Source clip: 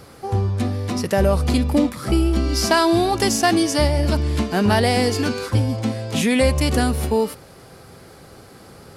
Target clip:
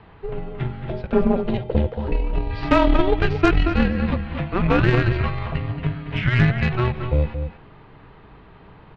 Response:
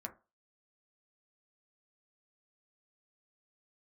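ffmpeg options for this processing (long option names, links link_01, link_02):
-filter_complex "[0:a]highpass=frequency=220:width_type=q:width=0.5412,highpass=frequency=220:width_type=q:width=1.307,lowpass=frequency=3300:width_type=q:width=0.5176,lowpass=frequency=3300:width_type=q:width=0.7071,lowpass=frequency=3300:width_type=q:width=1.932,afreqshift=-370,asettb=1/sr,asplit=3[link_01][link_02][link_03];[link_01]atrim=end=0.884[link_04];[link_02]atrim=start=0.88:end=2.51,asetpts=PTS-STARTPTS,afade=type=in:duration=0.004:curve=qsin,afade=type=out:start_time=1.626:duration=0.004:curve=qsin,equalizer=frequency=125:width_type=o:width=1:gain=-9,equalizer=frequency=500:width_type=o:width=1:gain=11,equalizer=frequency=1000:width_type=o:width=1:gain=-5,equalizer=frequency=2000:width_type=o:width=1:gain=-9[link_05];[link_03]atrim=start=2.506[link_06];[link_04][link_05]acrossfade=duration=0.004:curve1=hsin:curve2=qsin[link_07];[link_07][link_06]acrossfade=duration=0.004:curve1=qsin:curve2=hsin,asplit=2[link_08][link_09];[link_09]adelay=227.4,volume=-7dB,highshelf=frequency=4000:gain=-5.12[link_10];[link_08][link_10]amix=inputs=2:normalize=0,aeval=exprs='0.562*(cos(1*acos(clip(val(0)/0.562,-1,1)))-cos(1*PI/2))+0.141*(cos(4*acos(clip(val(0)/0.562,-1,1)))-cos(4*PI/2))+0.0501*(cos(5*acos(clip(val(0)/0.562,-1,1)))-cos(5*PI/2))+0.0447*(cos(6*acos(clip(val(0)/0.562,-1,1)))-cos(6*PI/2))+0.0398*(cos(7*acos(clip(val(0)/0.562,-1,1)))-cos(7*PI/2))':channel_layout=same"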